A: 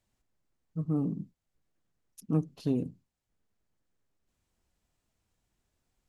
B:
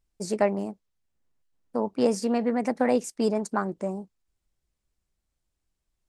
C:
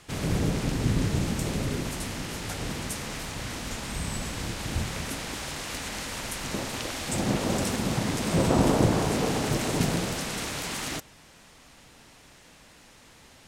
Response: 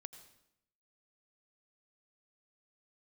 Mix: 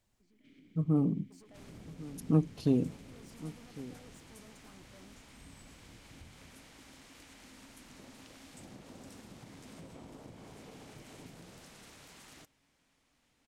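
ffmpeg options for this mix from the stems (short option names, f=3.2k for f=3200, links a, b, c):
-filter_complex "[0:a]volume=2dB,asplit=2[a][b];[b]volume=-17.5dB[c];[1:a]alimiter=limit=-21.5dB:level=0:latency=1,asoftclip=type=tanh:threshold=-34.5dB,volume=-17.5dB,asplit=2[d][e];[e]volume=-3dB[f];[2:a]acompressor=threshold=-26dB:ratio=6,adelay=350,volume=-16dB,asplit=2[g][h];[h]volume=-6dB[i];[d][g]amix=inputs=2:normalize=0,asplit=3[j][k][l];[j]bandpass=f=270:t=q:w=8,volume=0dB[m];[k]bandpass=f=2.29k:t=q:w=8,volume=-6dB[n];[l]bandpass=f=3.01k:t=q:w=8,volume=-9dB[o];[m][n][o]amix=inputs=3:normalize=0,acompressor=threshold=-56dB:ratio=6,volume=0dB[p];[c][f][i]amix=inputs=3:normalize=0,aecho=0:1:1103:1[q];[a][p][q]amix=inputs=3:normalize=0"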